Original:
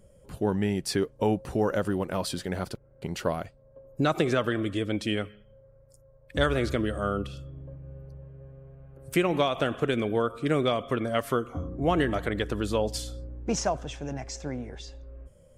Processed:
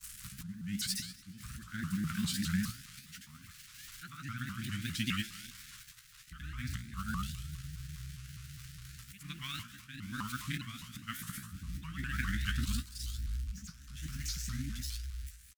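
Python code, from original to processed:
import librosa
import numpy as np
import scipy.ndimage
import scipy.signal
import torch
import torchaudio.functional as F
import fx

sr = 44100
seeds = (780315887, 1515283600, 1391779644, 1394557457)

y = x + 0.5 * 10.0 ** (-28.0 / 20.0) * np.diff(np.sign(x), prepend=np.sign(x[:1]))
y = fx.auto_swell(y, sr, attack_ms=513.0)
y = scipy.signal.sosfilt(scipy.signal.ellip(3, 1.0, 40, [220.0, 1400.0], 'bandstop', fs=sr, output='sos'), y)
y = fx.high_shelf(y, sr, hz=8400.0, db=-7.0)
y = fx.comb_fb(y, sr, f0_hz=62.0, decay_s=0.5, harmonics='all', damping=0.0, mix_pct=80)
y = fx.echo_feedback(y, sr, ms=164, feedback_pct=54, wet_db=-24.0)
y = fx.granulator(y, sr, seeds[0], grain_ms=100.0, per_s=20.0, spray_ms=100.0, spread_st=0)
y = fx.vibrato_shape(y, sr, shape='saw_up', rate_hz=4.9, depth_cents=250.0)
y = y * librosa.db_to_amplitude(8.0)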